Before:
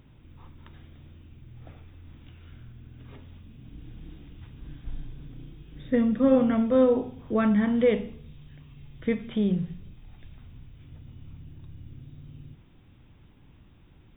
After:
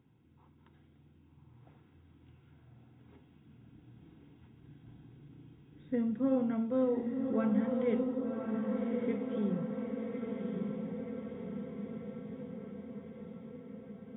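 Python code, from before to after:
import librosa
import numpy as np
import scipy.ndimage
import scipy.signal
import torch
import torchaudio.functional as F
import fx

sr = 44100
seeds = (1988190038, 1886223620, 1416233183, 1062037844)

y = scipy.signal.sosfilt(scipy.signal.butter(2, 120.0, 'highpass', fs=sr, output='sos'), x)
y = fx.high_shelf(y, sr, hz=2000.0, db=-9.0)
y = fx.notch_comb(y, sr, f0_hz=600.0)
y = fx.echo_diffused(y, sr, ms=1136, feedback_pct=65, wet_db=-3)
y = y * librosa.db_to_amplitude(-8.5)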